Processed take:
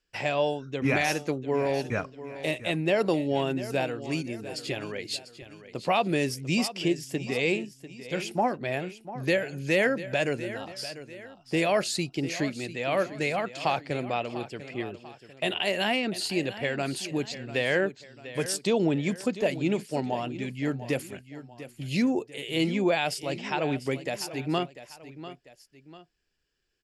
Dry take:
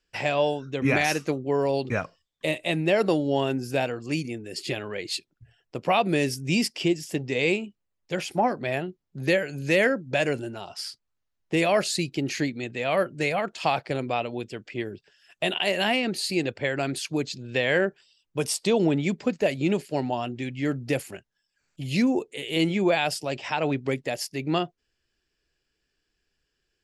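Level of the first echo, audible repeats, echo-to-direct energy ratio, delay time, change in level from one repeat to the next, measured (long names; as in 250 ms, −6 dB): −14.0 dB, 2, −13.0 dB, 695 ms, −7.5 dB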